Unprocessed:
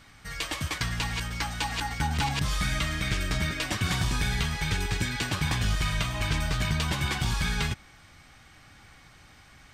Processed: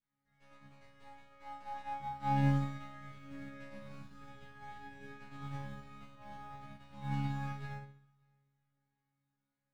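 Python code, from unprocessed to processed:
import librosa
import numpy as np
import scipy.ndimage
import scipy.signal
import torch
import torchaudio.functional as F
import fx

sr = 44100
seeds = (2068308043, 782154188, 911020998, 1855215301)

p1 = fx.tracing_dist(x, sr, depth_ms=0.12)
p2 = scipy.signal.sosfilt(scipy.signal.butter(2, 7200.0, 'lowpass', fs=sr, output='sos'), p1)
p3 = fx.high_shelf(p2, sr, hz=2400.0, db=-10.5)
p4 = fx.quant_float(p3, sr, bits=4)
p5 = np.clip(p4, -10.0 ** (-30.0 / 20.0), 10.0 ** (-30.0 / 20.0))
p6 = p4 + (p5 * 10.0 ** (-5.0 / 20.0))
p7 = fx.resonator_bank(p6, sr, root=49, chord='fifth', decay_s=0.73)
p8 = p7 + fx.echo_feedback(p7, sr, ms=582, feedback_pct=28, wet_db=-16.0, dry=0)
p9 = fx.rev_fdn(p8, sr, rt60_s=1.0, lf_ratio=1.5, hf_ratio=0.65, size_ms=11.0, drr_db=-0.5)
p10 = fx.upward_expand(p9, sr, threshold_db=-47.0, expansion=2.5)
y = p10 * 10.0 ** (3.0 / 20.0)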